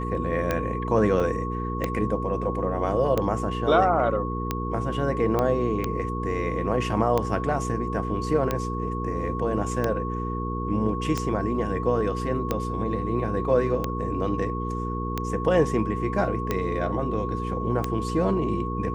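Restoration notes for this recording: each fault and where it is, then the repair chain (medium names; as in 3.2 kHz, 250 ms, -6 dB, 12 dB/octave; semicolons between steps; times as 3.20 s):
hum 60 Hz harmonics 8 -30 dBFS
tick 45 rpm -11 dBFS
whine 1.1 kHz -32 dBFS
1.20 s: dropout 3.7 ms
5.39 s: pop -12 dBFS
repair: de-click; band-stop 1.1 kHz, Q 30; de-hum 60 Hz, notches 8; interpolate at 1.20 s, 3.7 ms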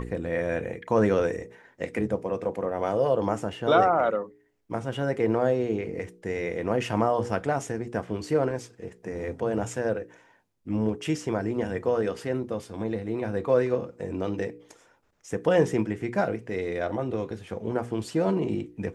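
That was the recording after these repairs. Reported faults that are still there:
nothing left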